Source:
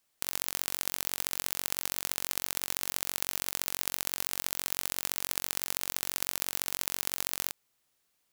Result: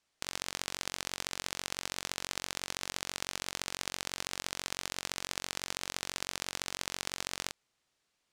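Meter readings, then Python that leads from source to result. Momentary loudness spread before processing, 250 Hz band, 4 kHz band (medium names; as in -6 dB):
0 LU, 0.0 dB, -0.5 dB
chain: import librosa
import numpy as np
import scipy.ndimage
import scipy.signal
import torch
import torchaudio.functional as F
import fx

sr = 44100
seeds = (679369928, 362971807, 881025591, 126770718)

y = scipy.signal.sosfilt(scipy.signal.butter(2, 6700.0, 'lowpass', fs=sr, output='sos'), x)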